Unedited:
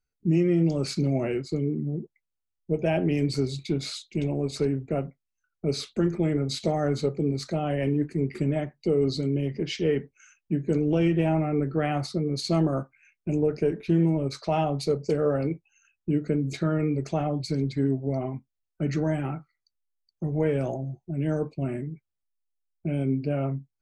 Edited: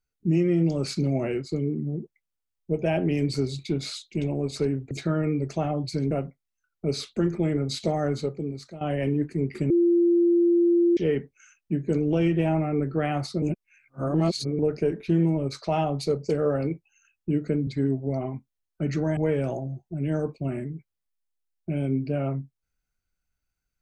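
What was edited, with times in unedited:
6.81–7.61 fade out, to -15.5 dB
8.5–9.77 bleep 344 Hz -16.5 dBFS
12.22–13.39 reverse
16.47–17.67 move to 4.91
19.17–20.34 cut

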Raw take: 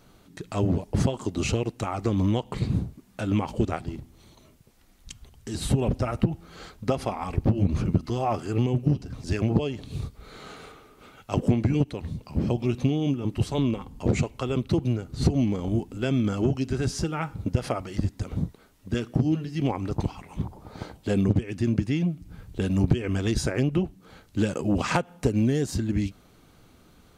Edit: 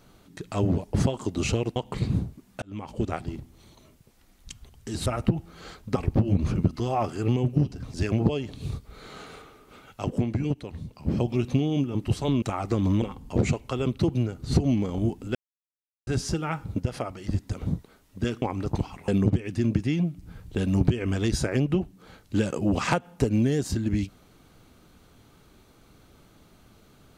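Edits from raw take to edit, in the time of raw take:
1.76–2.36 move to 13.72
3.22–3.8 fade in
5.66–6.01 cut
6.91–7.26 cut
11.32–12.38 gain -4 dB
16.05–16.77 mute
17.5–18 gain -3.5 dB
19.12–19.67 cut
20.33–21.11 cut

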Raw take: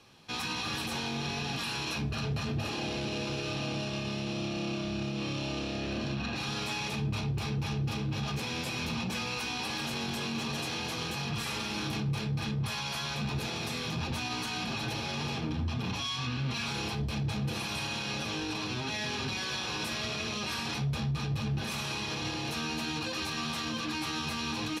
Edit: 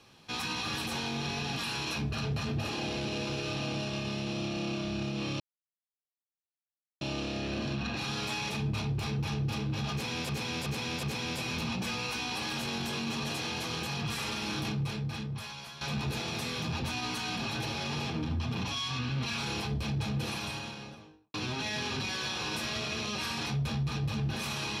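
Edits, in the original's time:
5.4 insert silence 1.61 s
8.31–8.68 loop, 4 plays
11.95–13.09 fade out, to -13 dB
17.53–18.62 studio fade out

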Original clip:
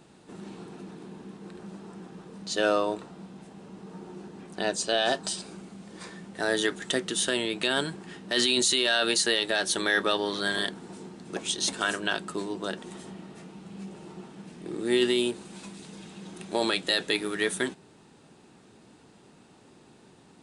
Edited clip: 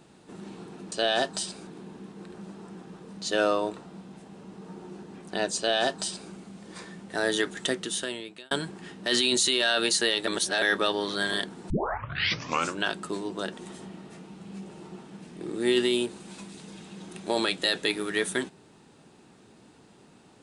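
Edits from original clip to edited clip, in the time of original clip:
4.82–5.57 copy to 0.92
6.91–7.76 fade out
9.52–9.87 reverse
10.95 tape start 1.12 s

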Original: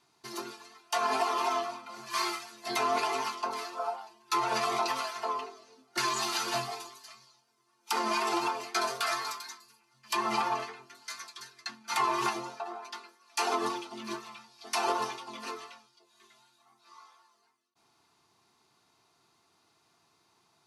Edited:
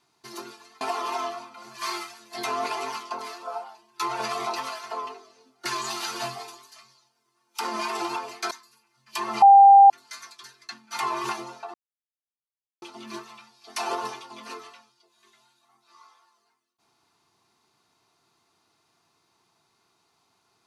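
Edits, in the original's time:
0.81–1.13 cut
8.83–9.48 cut
10.39–10.87 bleep 794 Hz -8 dBFS
12.71–13.79 mute

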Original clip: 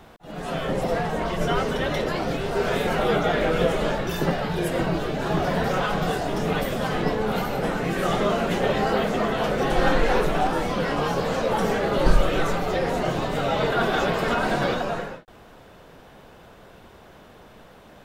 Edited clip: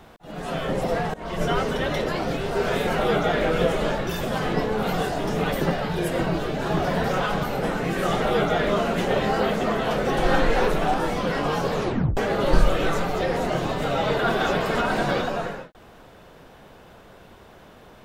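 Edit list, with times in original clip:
1.14–1.4 fade in, from -23.5 dB
2.96–3.43 copy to 8.22
4.21–6.03 swap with 6.7–7.43
11.27 tape stop 0.43 s

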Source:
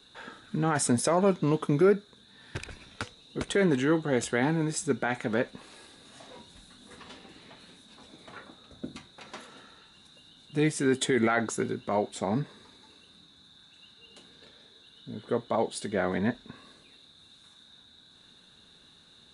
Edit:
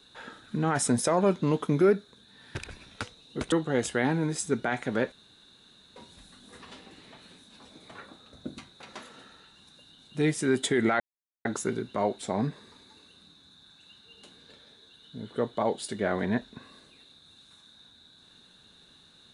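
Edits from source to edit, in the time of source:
3.52–3.9 cut
5.5–6.34 room tone
11.38 insert silence 0.45 s

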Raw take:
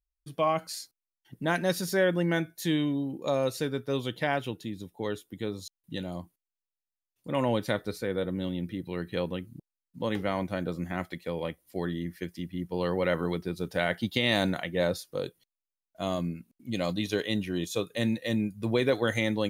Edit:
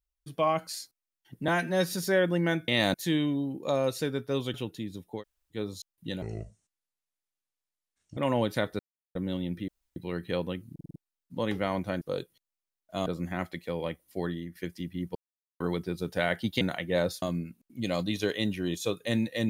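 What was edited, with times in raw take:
1.48–1.78 stretch 1.5×
4.13–4.4 cut
5.05–5.41 room tone, crossfade 0.10 s
6.08–7.29 speed 62%
7.91–8.27 mute
8.8 insert room tone 0.28 s
9.58 stutter 0.05 s, 5 plays
11.84–12.14 fade out, to -10 dB
12.74–13.19 mute
14.2–14.46 move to 2.53
15.07–16.12 move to 10.65

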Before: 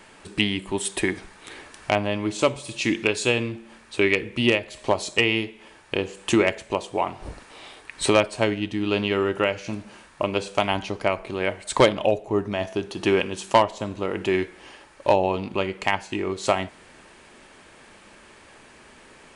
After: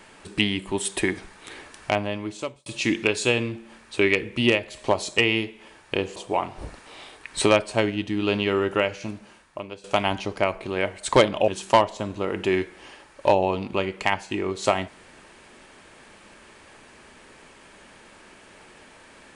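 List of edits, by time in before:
1.52–2.66 fade out equal-power
6.16–6.8 cut
9.5–10.48 fade out, to -19 dB
12.12–13.29 cut

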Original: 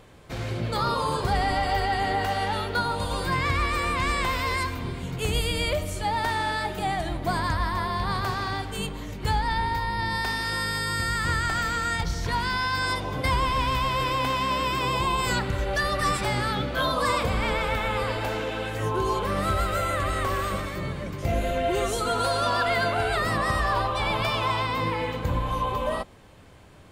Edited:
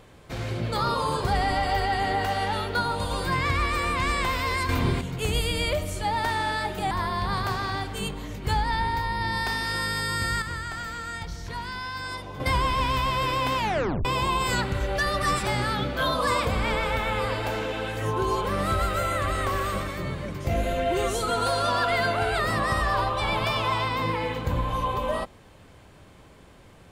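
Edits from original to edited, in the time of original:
4.69–5.01 gain +8 dB
6.91–7.69 cut
11.2–13.18 gain -7.5 dB
14.36 tape stop 0.47 s

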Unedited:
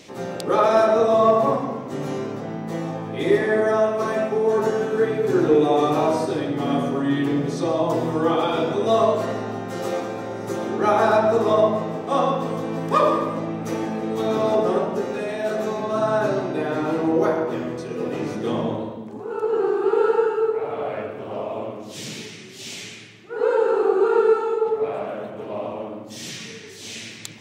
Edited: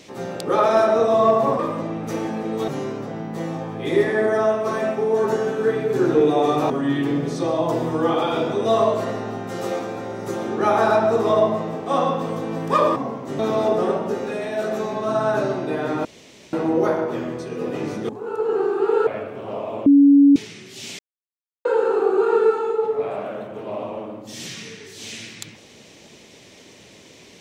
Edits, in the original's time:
1.59–2.02 swap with 13.17–14.26
6.04–6.91 cut
16.92 insert room tone 0.48 s
18.48–19.13 cut
20.11–20.9 cut
21.69–22.19 bleep 282 Hz -8 dBFS
22.82–23.48 mute

